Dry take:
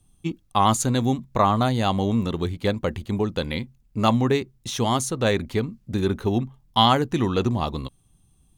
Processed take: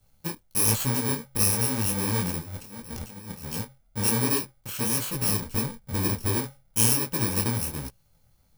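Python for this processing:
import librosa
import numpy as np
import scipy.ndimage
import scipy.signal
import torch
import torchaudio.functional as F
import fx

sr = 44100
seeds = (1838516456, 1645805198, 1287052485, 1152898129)

y = fx.bit_reversed(x, sr, seeds[0], block=64)
y = fx.over_compress(y, sr, threshold_db=-35.0, ratio=-1.0, at=(2.37, 3.52))
y = fx.low_shelf(y, sr, hz=66.0, db=12.0, at=(5.14, 6.37))
y = fx.detune_double(y, sr, cents=48)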